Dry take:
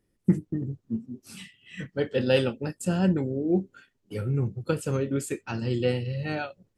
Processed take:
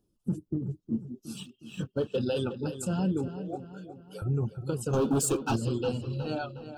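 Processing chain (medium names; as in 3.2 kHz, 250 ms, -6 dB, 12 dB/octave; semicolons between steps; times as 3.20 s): coarse spectral quantiser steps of 15 dB; reverb removal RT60 0.67 s; 1.35–2.17 s: waveshaping leveller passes 1; 3.28–4.22 s: high-pass 550 Hz 24 dB/octave; peak limiter -20.5 dBFS, peak gain reduction 10.5 dB; 4.93–5.56 s: waveshaping leveller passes 3; Butterworth band-stop 2 kHz, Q 1.5; filtered feedback delay 363 ms, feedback 48%, low-pass 4.3 kHz, level -11 dB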